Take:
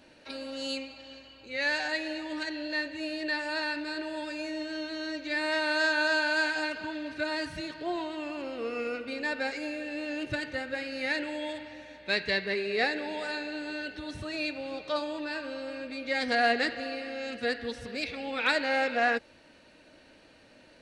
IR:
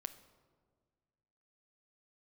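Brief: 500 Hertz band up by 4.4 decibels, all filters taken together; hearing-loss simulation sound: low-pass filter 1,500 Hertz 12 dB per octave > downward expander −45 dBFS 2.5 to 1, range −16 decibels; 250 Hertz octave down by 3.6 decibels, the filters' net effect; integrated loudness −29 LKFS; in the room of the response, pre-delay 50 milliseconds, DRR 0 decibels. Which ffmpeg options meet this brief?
-filter_complex "[0:a]equalizer=frequency=250:width_type=o:gain=-7.5,equalizer=frequency=500:width_type=o:gain=7,asplit=2[link_01][link_02];[1:a]atrim=start_sample=2205,adelay=50[link_03];[link_02][link_03]afir=irnorm=-1:irlink=0,volume=3dB[link_04];[link_01][link_04]amix=inputs=2:normalize=0,lowpass=1500,agate=range=-16dB:threshold=-45dB:ratio=2.5,volume=-0.5dB"

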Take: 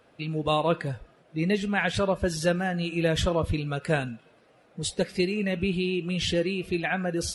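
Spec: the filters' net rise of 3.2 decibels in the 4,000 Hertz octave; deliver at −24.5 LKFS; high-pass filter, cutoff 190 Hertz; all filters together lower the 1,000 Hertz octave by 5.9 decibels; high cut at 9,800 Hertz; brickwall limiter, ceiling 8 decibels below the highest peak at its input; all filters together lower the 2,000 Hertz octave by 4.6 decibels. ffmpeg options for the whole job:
ffmpeg -i in.wav -af "highpass=190,lowpass=9800,equalizer=frequency=1000:width_type=o:gain=-7.5,equalizer=frequency=2000:width_type=o:gain=-6,equalizer=frequency=4000:width_type=o:gain=6.5,volume=6.5dB,alimiter=limit=-13dB:level=0:latency=1" out.wav

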